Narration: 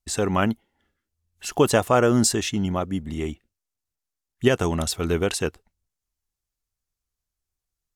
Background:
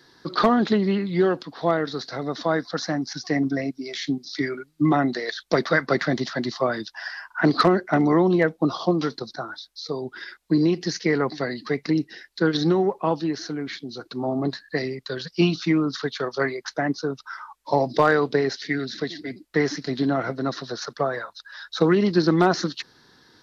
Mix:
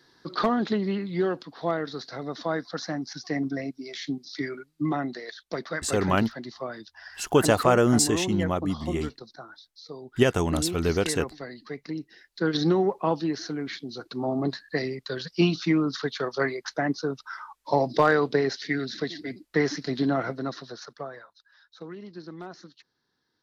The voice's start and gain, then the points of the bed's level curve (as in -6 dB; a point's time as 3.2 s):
5.75 s, -1.5 dB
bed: 4.59 s -5.5 dB
5.49 s -11.5 dB
12.15 s -11.5 dB
12.57 s -2 dB
20.19 s -2 dB
21.78 s -22 dB